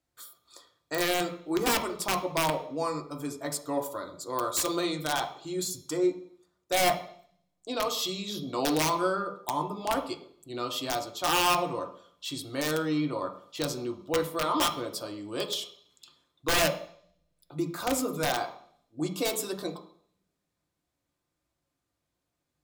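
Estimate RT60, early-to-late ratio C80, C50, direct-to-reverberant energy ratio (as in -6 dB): 0.60 s, 13.5 dB, 10.5 dB, 3.0 dB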